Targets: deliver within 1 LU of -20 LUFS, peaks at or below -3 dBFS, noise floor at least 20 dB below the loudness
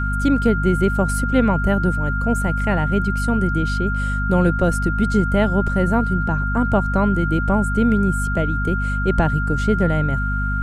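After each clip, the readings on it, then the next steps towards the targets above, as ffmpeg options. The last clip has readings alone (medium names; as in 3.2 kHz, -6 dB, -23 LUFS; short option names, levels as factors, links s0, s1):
hum 50 Hz; highest harmonic 250 Hz; hum level -20 dBFS; steady tone 1.4 kHz; tone level -24 dBFS; loudness -19.5 LUFS; peak level -4.0 dBFS; loudness target -20.0 LUFS
-> -af "bandreject=f=50:t=h:w=6,bandreject=f=100:t=h:w=6,bandreject=f=150:t=h:w=6,bandreject=f=200:t=h:w=6,bandreject=f=250:t=h:w=6"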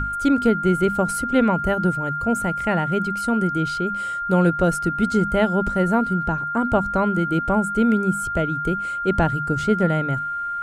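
hum not found; steady tone 1.4 kHz; tone level -24 dBFS
-> -af "bandreject=f=1400:w=30"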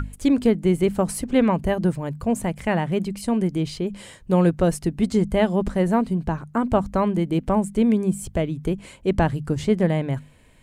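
steady tone not found; loudness -22.5 LUFS; peak level -6.5 dBFS; loudness target -20.0 LUFS
-> -af "volume=1.33"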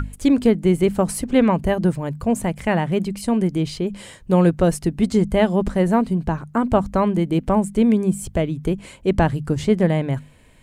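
loudness -20.0 LUFS; peak level -4.0 dBFS; noise floor -47 dBFS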